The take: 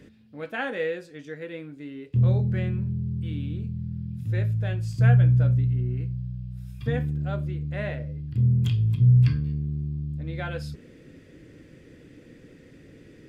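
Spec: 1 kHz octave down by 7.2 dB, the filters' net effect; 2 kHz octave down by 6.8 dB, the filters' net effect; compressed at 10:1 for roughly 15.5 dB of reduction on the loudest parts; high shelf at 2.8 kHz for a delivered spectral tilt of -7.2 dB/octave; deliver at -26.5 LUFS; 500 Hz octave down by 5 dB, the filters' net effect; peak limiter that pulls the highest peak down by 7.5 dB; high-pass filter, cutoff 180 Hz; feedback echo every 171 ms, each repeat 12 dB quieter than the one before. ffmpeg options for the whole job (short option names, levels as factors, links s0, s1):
-af "highpass=180,equalizer=f=500:t=o:g=-3.5,equalizer=f=1000:t=o:g=-8.5,equalizer=f=2000:t=o:g=-7.5,highshelf=f=2800:g=5.5,acompressor=threshold=0.0141:ratio=10,alimiter=level_in=3.76:limit=0.0631:level=0:latency=1,volume=0.266,aecho=1:1:171|342|513:0.251|0.0628|0.0157,volume=7.08"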